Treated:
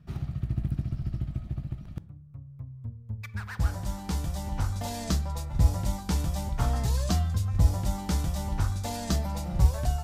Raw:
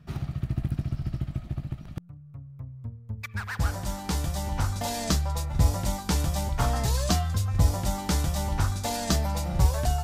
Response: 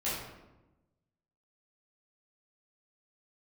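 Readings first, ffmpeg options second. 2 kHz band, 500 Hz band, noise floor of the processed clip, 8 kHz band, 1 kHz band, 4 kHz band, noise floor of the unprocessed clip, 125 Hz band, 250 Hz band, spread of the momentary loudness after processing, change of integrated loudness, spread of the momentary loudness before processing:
-6.0 dB, -5.0 dB, -47 dBFS, -6.0 dB, -5.0 dB, -6.0 dB, -46 dBFS, -1.0 dB, -2.0 dB, 14 LU, -1.5 dB, 14 LU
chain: -filter_complex "[0:a]lowshelf=f=270:g=6,asplit=2[s0][s1];[1:a]atrim=start_sample=2205,asetrate=74970,aresample=44100[s2];[s1][s2]afir=irnorm=-1:irlink=0,volume=0.141[s3];[s0][s3]amix=inputs=2:normalize=0,volume=0.473"

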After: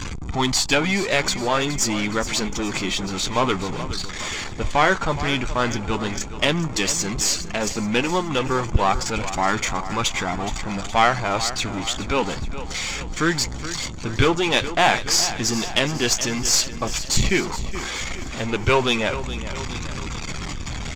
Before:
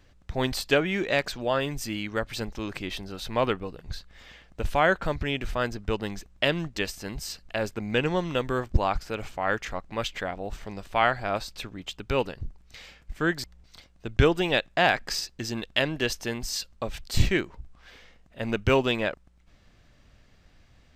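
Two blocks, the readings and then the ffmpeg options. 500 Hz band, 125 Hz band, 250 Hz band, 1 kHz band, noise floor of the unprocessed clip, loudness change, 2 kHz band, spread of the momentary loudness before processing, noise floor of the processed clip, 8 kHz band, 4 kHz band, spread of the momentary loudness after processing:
+3.0 dB, +5.0 dB, +6.5 dB, +7.5 dB, -58 dBFS, +6.0 dB, +5.5 dB, 14 LU, -31 dBFS, +17.0 dB, +9.0 dB, 10 LU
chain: -filter_complex "[0:a]aeval=exprs='val(0)+0.5*0.0447*sgn(val(0))':c=same,afftdn=nr=14:nf=-42,lowpass=f=7100:t=q:w=5.7,lowshelf=f=120:g=-6,aecho=1:1:0.9:0.34,areverse,acompressor=mode=upward:threshold=0.0355:ratio=2.5,areverse,aeval=exprs='(tanh(3.98*val(0)+0.6)-tanh(0.6))/3.98':c=same,adynamicequalizer=threshold=0.00501:dfrequency=840:dqfactor=5.1:tfrequency=840:tqfactor=5.1:attack=5:release=100:ratio=0.375:range=2:mode=boostabove:tftype=bell,asplit=2[s0][s1];[s1]adynamicsmooth=sensitivity=4.5:basefreq=5500,volume=0.75[s2];[s0][s2]amix=inputs=2:normalize=0,flanger=delay=0.8:depth=7.8:regen=-61:speed=0.1:shape=sinusoidal,aecho=1:1:420|840|1260|1680|2100|2520:0.224|0.121|0.0653|0.0353|0.019|0.0103,volume=1.88"

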